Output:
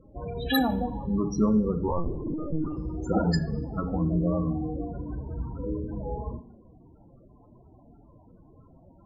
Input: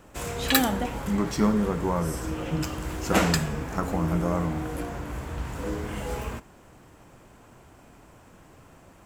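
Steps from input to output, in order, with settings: loudest bins only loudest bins 16; on a send at -10.5 dB: reverb RT60 0.70 s, pre-delay 30 ms; 1.88–2.77 on the sum: LPC vocoder at 8 kHz pitch kept

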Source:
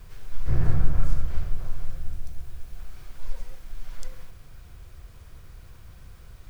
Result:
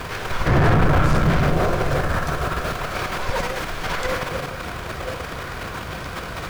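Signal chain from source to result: delay with a stepping band-pass 0.503 s, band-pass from 190 Hz, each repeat 1.4 oct, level -4 dB; transient shaper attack +2 dB, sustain +7 dB; overdrive pedal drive 40 dB, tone 1500 Hz, clips at -3 dBFS; gain -4 dB

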